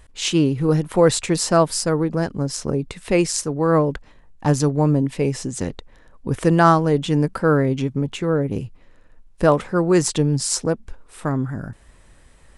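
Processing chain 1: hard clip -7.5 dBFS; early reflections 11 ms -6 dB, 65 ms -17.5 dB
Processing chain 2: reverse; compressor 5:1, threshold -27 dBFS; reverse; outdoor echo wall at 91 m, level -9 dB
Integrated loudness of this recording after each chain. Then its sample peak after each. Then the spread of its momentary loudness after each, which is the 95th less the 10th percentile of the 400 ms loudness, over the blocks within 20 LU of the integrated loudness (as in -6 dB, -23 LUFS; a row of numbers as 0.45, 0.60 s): -19.5, -31.0 LUFS; -3.0, -10.5 dBFS; 12, 10 LU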